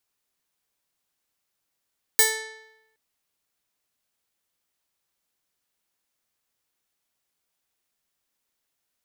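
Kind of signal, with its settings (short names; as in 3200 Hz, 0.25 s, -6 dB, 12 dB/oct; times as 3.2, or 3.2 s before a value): plucked string A4, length 0.77 s, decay 0.92 s, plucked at 0.35, bright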